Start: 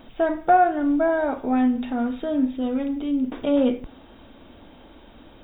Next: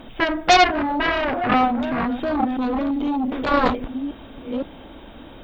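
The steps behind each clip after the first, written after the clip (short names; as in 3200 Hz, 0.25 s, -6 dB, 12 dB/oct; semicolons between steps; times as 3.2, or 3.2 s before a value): reverse delay 0.514 s, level -10.5 dB; added harmonics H 7 -7 dB, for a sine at -7 dBFS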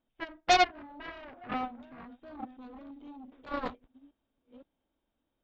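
upward expander 2.5:1, over -33 dBFS; gain -8 dB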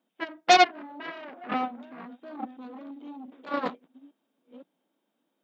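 elliptic high-pass 170 Hz; gain +6 dB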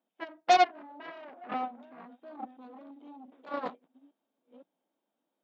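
bell 720 Hz +6 dB 1.3 oct; gain -9 dB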